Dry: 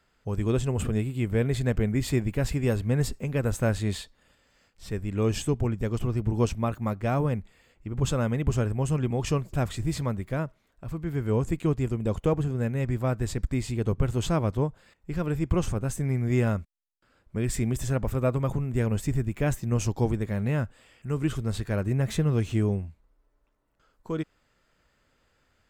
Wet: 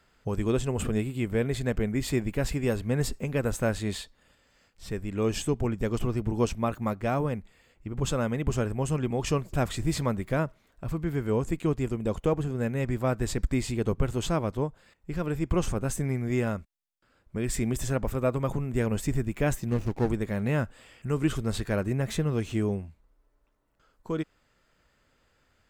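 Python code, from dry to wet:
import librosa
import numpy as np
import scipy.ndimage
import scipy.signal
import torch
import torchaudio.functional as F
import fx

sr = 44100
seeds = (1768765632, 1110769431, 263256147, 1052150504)

y = fx.median_filter(x, sr, points=41, at=(19.68, 20.1))
y = fx.dynamic_eq(y, sr, hz=100.0, q=1.0, threshold_db=-37.0, ratio=4.0, max_db=-6)
y = fx.rider(y, sr, range_db=3, speed_s=0.5)
y = F.gain(torch.from_numpy(y), 1.5).numpy()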